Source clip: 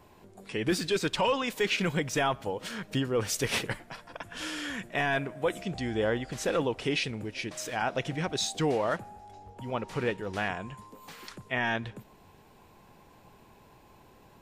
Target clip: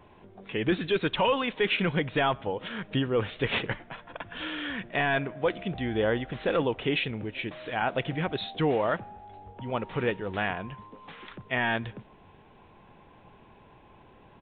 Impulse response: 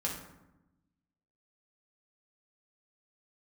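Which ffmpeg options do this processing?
-af "aresample=8000,aresample=44100,volume=1.26"

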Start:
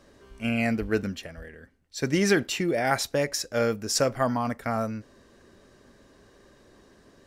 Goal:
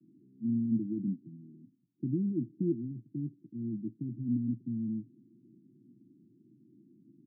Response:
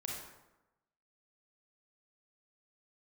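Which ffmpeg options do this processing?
-af "alimiter=limit=0.112:level=0:latency=1,asuperpass=centerf=200:order=20:qfactor=0.86"

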